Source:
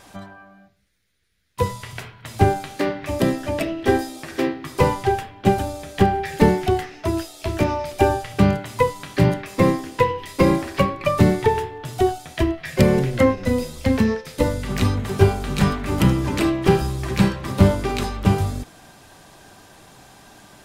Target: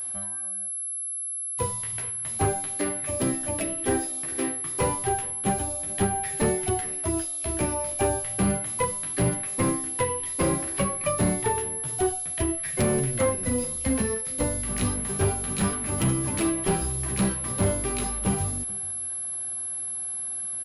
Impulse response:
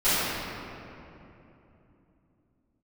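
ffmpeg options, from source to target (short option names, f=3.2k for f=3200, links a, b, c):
-af "flanger=delay=8.4:depth=9:regen=-29:speed=0.31:shape=sinusoidal,asoftclip=type=hard:threshold=-15.5dB,aeval=exprs='val(0)+0.0447*sin(2*PI*11000*n/s)':c=same,aecho=1:1:431:0.0794,volume=-3dB"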